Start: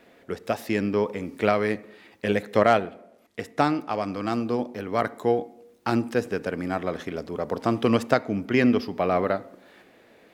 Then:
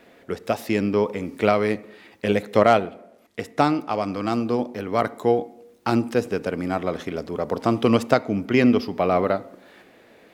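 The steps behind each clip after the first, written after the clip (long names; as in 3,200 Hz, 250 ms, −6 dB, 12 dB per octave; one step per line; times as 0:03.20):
dynamic equaliser 1,700 Hz, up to −6 dB, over −47 dBFS, Q 4.6
level +3 dB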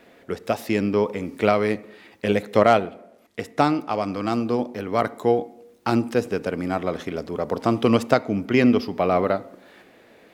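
no processing that can be heard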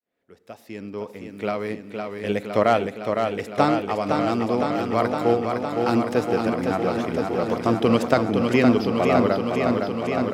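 fade in at the beginning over 3.23 s
feedback echo with a swinging delay time 511 ms, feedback 79%, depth 57 cents, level −5 dB
level −1 dB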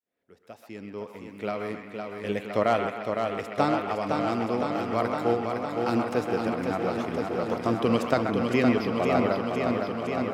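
delay with a band-pass on its return 130 ms, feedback 47%, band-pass 1,500 Hz, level −5 dB
level −5 dB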